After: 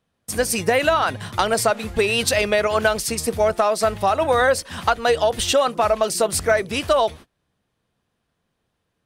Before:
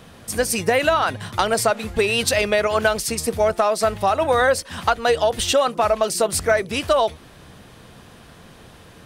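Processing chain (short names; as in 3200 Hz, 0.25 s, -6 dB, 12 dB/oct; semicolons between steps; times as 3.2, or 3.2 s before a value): gate -36 dBFS, range -29 dB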